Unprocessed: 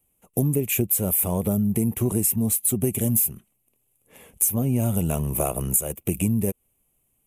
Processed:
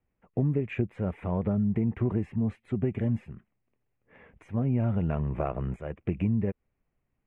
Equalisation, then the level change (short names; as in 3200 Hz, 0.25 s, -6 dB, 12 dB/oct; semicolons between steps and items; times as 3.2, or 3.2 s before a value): ladder low-pass 2100 Hz, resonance 50%; low shelf 200 Hz +4 dB; +3.5 dB